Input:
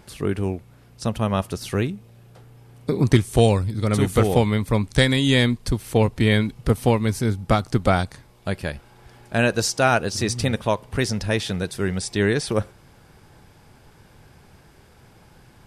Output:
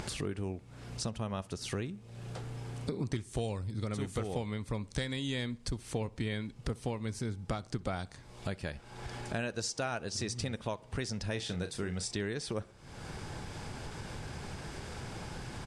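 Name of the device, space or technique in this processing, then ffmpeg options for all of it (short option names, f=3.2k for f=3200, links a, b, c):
upward and downward compression: -filter_complex "[0:a]lowpass=f=8.7k:w=0.5412,lowpass=f=8.7k:w=1.3066,highshelf=f=5.8k:g=5,acompressor=mode=upward:threshold=-29dB:ratio=2.5,acompressor=threshold=-33dB:ratio=4,asplit=3[a][b][c];[a]afade=t=out:st=11.35:d=0.02[d];[b]asplit=2[e][f];[f]adelay=34,volume=-9dB[g];[e][g]amix=inputs=2:normalize=0,afade=t=in:st=11.35:d=0.02,afade=t=out:st=12.11:d=0.02[h];[c]afade=t=in:st=12.11:d=0.02[i];[d][h][i]amix=inputs=3:normalize=0,asplit=2[j][k];[k]adelay=63,lowpass=f=2.8k:p=1,volume=-22dB,asplit=2[l][m];[m]adelay=63,lowpass=f=2.8k:p=1,volume=0.47,asplit=2[n][o];[o]adelay=63,lowpass=f=2.8k:p=1,volume=0.47[p];[j][l][n][p]amix=inputs=4:normalize=0,volume=-2dB"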